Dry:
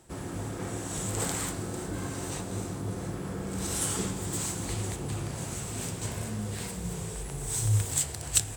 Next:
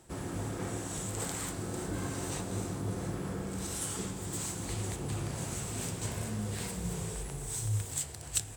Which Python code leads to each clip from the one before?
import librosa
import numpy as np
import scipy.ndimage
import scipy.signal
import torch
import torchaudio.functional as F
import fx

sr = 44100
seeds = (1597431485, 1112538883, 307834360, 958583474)

y = fx.rider(x, sr, range_db=3, speed_s=0.5)
y = y * librosa.db_to_amplitude(-4.0)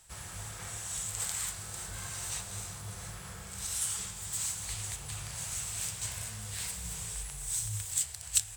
y = fx.tone_stack(x, sr, knobs='10-0-10')
y = y * librosa.db_to_amplitude(5.0)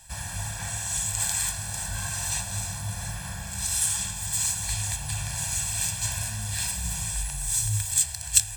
y = x + 0.98 * np.pad(x, (int(1.2 * sr / 1000.0), 0))[:len(x)]
y = y * librosa.db_to_amplitude(5.5)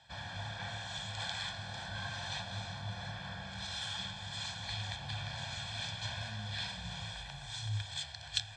y = fx.cabinet(x, sr, low_hz=140.0, low_slope=12, high_hz=3900.0, hz=(160.0, 320.0, 1000.0, 1900.0, 3400.0), db=(-6, -5, -5, -4, 4))
y = fx.notch(y, sr, hz=2700.0, q=5.8)
y = y * librosa.db_to_amplitude(-2.0)